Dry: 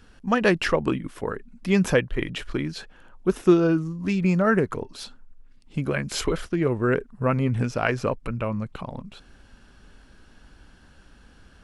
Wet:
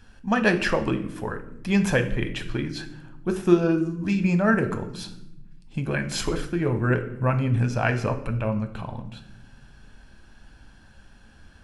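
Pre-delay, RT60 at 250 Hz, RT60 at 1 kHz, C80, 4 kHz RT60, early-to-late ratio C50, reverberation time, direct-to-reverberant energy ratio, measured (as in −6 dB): 9 ms, 1.7 s, 0.65 s, 15.0 dB, 0.60 s, 12.0 dB, 0.85 s, 6.5 dB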